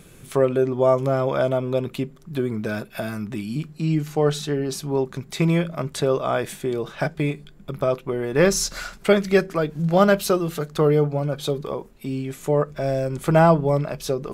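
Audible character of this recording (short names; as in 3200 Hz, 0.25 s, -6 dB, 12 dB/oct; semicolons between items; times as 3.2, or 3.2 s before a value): noise floor -47 dBFS; spectral tilt -6.0 dB/oct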